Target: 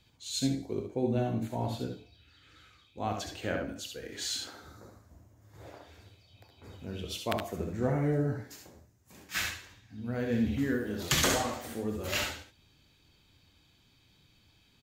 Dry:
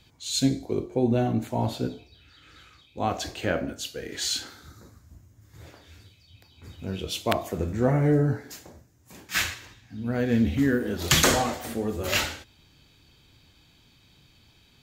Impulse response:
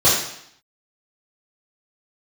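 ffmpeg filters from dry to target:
-filter_complex "[0:a]asettb=1/sr,asplit=3[s0][s1][s2];[s0]atrim=end=4.474[s3];[s1]atrim=start=4.47:end=6.79,asetpts=PTS-STARTPTS,afade=t=in:d=0.004:c=qsin,afade=t=out:st=2.316:d=0.004:c=qsin,equalizer=f=650:t=o:w=2:g=11.5[s4];[s2]atrim=start=6.786[s5];[s3][s4]acrossfade=d=0.004:c1=hsin:c2=qsin[s6];[s6][s5]acrossfade=d=0.004:c1=qsin:c2=hsin,aecho=1:1:66|76:0.422|0.376,volume=0.422"

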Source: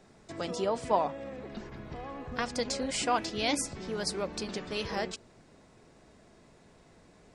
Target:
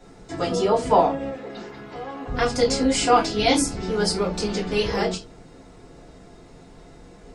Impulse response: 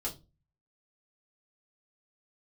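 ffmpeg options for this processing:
-filter_complex "[0:a]asettb=1/sr,asplit=3[s0][s1][s2];[s0]atrim=end=1.294[s3];[s1]atrim=start=1.29:end=2.26,asetpts=PTS-STARTPTS,afade=t=in:d=0.004:c=qsin,afade=t=out:st=0.966:d=0.004:c=qsin,highpass=f=550:p=1[s4];[s2]atrim=start=2.256[s5];[s3][s4]acrossfade=d=0.004:c1=hsin:c2=qsin[s6];[s6][s5]acrossfade=d=0.004:c1=qsin:c2=hsin[s7];[1:a]atrim=start_sample=2205,afade=t=out:st=0.15:d=0.01,atrim=end_sample=7056[s8];[s7][s8]afir=irnorm=-1:irlink=0,volume=2.37"

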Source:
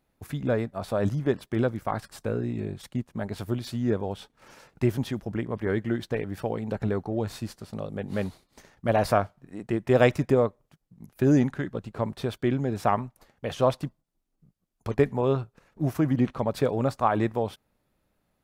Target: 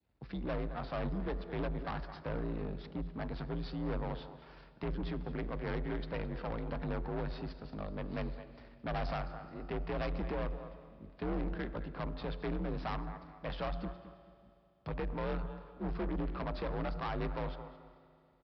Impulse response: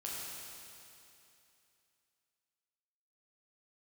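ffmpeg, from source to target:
-filter_complex "[0:a]aeval=exprs='if(lt(val(0),0),0.251*val(0),val(0))':c=same,afreqshift=44,highpass=f=46:p=1,bandreject=f=86.63:t=h:w=4,bandreject=f=173.26:t=h:w=4,bandreject=f=259.89:t=h:w=4,bandreject=f=346.52:t=h:w=4,bandreject=f=433.15:t=h:w=4,bandreject=f=519.78:t=h:w=4,bandreject=f=606.41:t=h:w=4,bandreject=f=693.04:t=h:w=4,alimiter=limit=0.119:level=0:latency=1:release=179,lowshelf=f=100:g=10.5,aecho=1:1:216|432:0.141|0.0367,asplit=2[s0][s1];[1:a]atrim=start_sample=2205[s2];[s1][s2]afir=irnorm=-1:irlink=0,volume=0.178[s3];[s0][s3]amix=inputs=2:normalize=0,adynamicequalizer=threshold=0.00447:dfrequency=1200:dqfactor=1.1:tfrequency=1200:tqfactor=1.1:attack=5:release=100:ratio=0.375:range=2.5:mode=boostabove:tftype=bell,aresample=11025,asoftclip=type=tanh:threshold=0.0473,aresample=44100,volume=0.531"

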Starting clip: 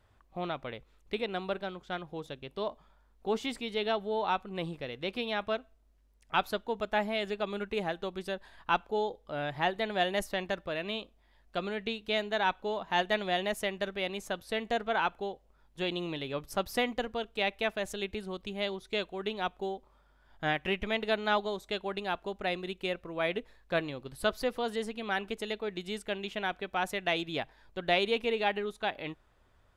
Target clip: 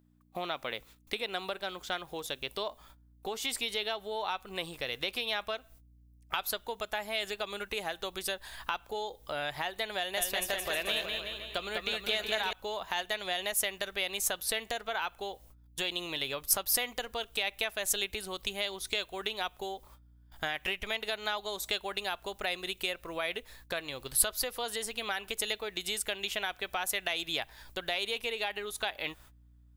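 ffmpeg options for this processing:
-filter_complex "[0:a]alimiter=limit=0.0708:level=0:latency=1:release=293,agate=range=0.0447:threshold=0.00126:ratio=16:detection=peak,aeval=exprs='val(0)+0.000891*(sin(2*PI*60*n/s)+sin(2*PI*2*60*n/s)/2+sin(2*PI*3*60*n/s)/3+sin(2*PI*4*60*n/s)/4+sin(2*PI*5*60*n/s)/5)':c=same,acompressor=threshold=0.01:ratio=4,aemphasis=mode=production:type=riaa,asettb=1/sr,asplit=3[s0][s1][s2];[s0]atrim=end=9.974[s3];[s1]atrim=start=9.97:end=12.53,asetpts=PTS-STARTPTS,afade=t=in:d=0.004:c=qsin,afade=t=out:st=2.556:d=0.004:c=qsin,aecho=1:1:200|370|514.5|637.3|741.7:0.631|0.398|0.251|0.158|0.1,atrim=end_sample=112896[s4];[s2]atrim=start=12.526[s5];[s3][s4]acrossfade=d=0.004:c1=hsin:c2=qsin[s6];[s6][s5]acrossfade=d=0.004:c1=qsin:c2=hsin,asubboost=boost=6.5:cutoff=77,volume=2.66"

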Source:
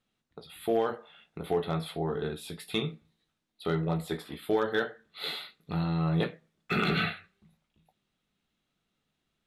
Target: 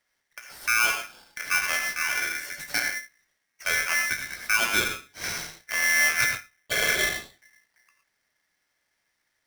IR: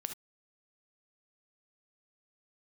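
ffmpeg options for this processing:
-filter_complex "[0:a]asettb=1/sr,asplit=3[s0][s1][s2];[s0]atrim=end=6.254[s3];[s1]atrim=start=6.25:end=7.13,asetpts=PTS-STARTPTS,afade=t=in:d=0.004:c=qsin,afade=t=out:st=0.876:d=0.004:c=qsin,lowpass=f=1900:w=0.5412,lowpass=f=1900:w=1.3066[s4];[s2]atrim=start=7.126[s5];[s3][s4]acrossfade=d=0.004:c1=hsin:c2=qsin[s6];[s6][s5]acrossfade=d=0.004:c1=qsin:c2=hsin[s7];[1:a]atrim=start_sample=2205,asetrate=29106,aresample=44100[s8];[s7][s8]afir=irnorm=-1:irlink=0,aeval=exprs='val(0)*sgn(sin(2*PI*1900*n/s))':c=same,volume=1.41"

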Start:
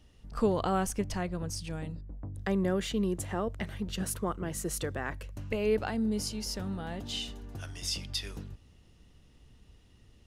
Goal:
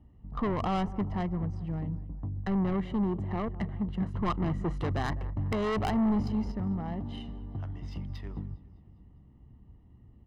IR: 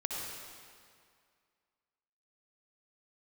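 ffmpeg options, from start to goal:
-filter_complex "[0:a]highshelf=f=6300:g=-6.5,aecho=1:1:203|406|609|812|1015:0.112|0.0628|0.0352|0.0197|0.011,asettb=1/sr,asplit=3[s0][s1][s2];[s0]atrim=end=4.144[s3];[s1]atrim=start=4.14:end=6.52,asetpts=PTS-STARTPTS,afade=t=in:d=0.004:c=qsin,afade=t=out:st=2.376:d=0.004:c=qsin,acontrast=29[s4];[s2]atrim=start=6.516[s5];[s3][s4]acrossfade=d=0.004:c1=hsin:c2=qsin[s6];[s6][s5]acrossfade=d=0.004:c1=qsin:c2=hsin,highpass=f=74:p=1,adynamicsmooth=sensitivity=1.5:basefreq=810,asoftclip=type=tanh:threshold=0.0355,aecho=1:1:1:0.53,volume=1.68"

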